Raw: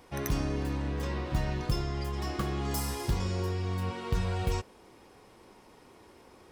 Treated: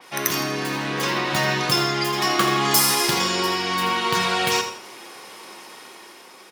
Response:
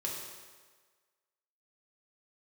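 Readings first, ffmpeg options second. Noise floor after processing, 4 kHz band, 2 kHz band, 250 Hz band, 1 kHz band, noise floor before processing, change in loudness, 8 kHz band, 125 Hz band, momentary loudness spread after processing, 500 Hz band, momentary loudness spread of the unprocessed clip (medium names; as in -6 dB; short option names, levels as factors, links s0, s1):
-46 dBFS, +20.5 dB, +19.0 dB, +8.0 dB, +16.5 dB, -57 dBFS, +12.0 dB, +19.0 dB, -0.5 dB, 22 LU, +10.5 dB, 3 LU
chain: -filter_complex "[0:a]dynaudnorm=f=140:g=11:m=1.78,highpass=f=150:w=0.5412,highpass=f=150:w=1.3066,tiltshelf=f=770:g=-8.5,bandreject=f=7900:w=21,aecho=1:1:81|162|243|324:0.282|0.0986|0.0345|0.0121,asplit=2[s0][s1];[1:a]atrim=start_sample=2205,atrim=end_sample=6615[s2];[s1][s2]afir=irnorm=-1:irlink=0,volume=0.501[s3];[s0][s3]amix=inputs=2:normalize=0,adynamicequalizer=threshold=0.01:dfrequency=4500:dqfactor=0.7:tfrequency=4500:tqfactor=0.7:attack=5:release=100:ratio=0.375:range=1.5:mode=cutabove:tftype=highshelf,volume=1.88"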